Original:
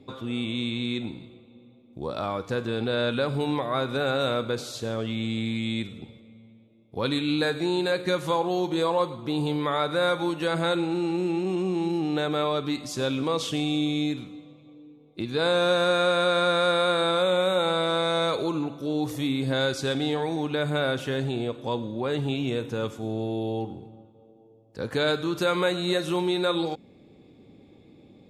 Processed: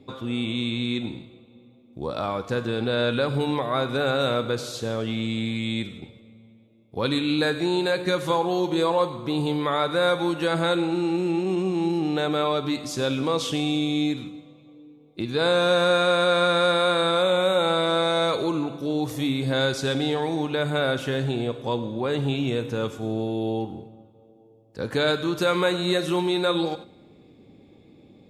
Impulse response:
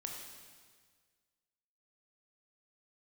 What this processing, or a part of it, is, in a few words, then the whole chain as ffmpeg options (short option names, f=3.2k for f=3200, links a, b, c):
keyed gated reverb: -filter_complex "[0:a]asplit=3[a][b][c];[1:a]atrim=start_sample=2205[d];[b][d]afir=irnorm=-1:irlink=0[e];[c]apad=whole_len=1247868[f];[e][f]sidechaingate=range=-10dB:threshold=-40dB:ratio=16:detection=peak,volume=-7.5dB[g];[a][g]amix=inputs=2:normalize=0"